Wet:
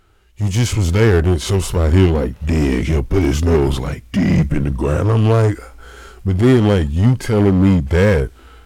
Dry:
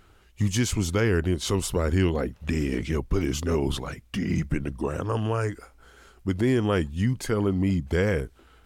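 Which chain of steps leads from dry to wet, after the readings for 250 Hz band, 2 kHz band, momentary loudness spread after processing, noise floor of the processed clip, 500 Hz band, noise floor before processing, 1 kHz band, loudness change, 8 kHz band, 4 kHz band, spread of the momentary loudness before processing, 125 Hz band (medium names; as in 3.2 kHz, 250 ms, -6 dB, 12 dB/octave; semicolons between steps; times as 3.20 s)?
+10.0 dB, +7.5 dB, 7 LU, -45 dBFS, +10.0 dB, -56 dBFS, +8.5 dB, +10.5 dB, +4.5 dB, +6.5 dB, 7 LU, +12.0 dB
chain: harmonic-percussive split percussive -13 dB; in parallel at -6 dB: wavefolder -30 dBFS; on the sum: level rider gain up to 15 dB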